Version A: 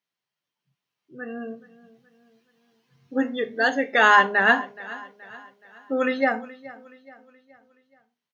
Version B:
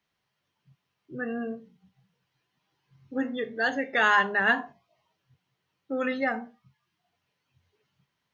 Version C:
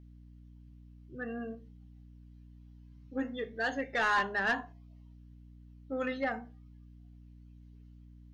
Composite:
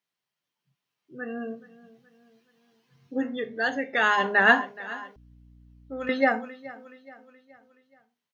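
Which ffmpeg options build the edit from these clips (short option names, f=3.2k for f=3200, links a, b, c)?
-filter_complex "[0:a]asplit=3[a][b][c];[a]atrim=end=3.23[d];[1:a]atrim=start=3.07:end=4.28[e];[b]atrim=start=4.12:end=5.162[f];[2:a]atrim=start=5.158:end=6.092[g];[c]atrim=start=6.088[h];[d][e]acrossfade=d=0.16:c1=tri:c2=tri[i];[i][f]acrossfade=d=0.16:c1=tri:c2=tri[j];[j][g]acrossfade=d=0.004:c1=hsin:c2=hsin[k];[k][h]acrossfade=d=0.004:c1=hsin:c2=hsin"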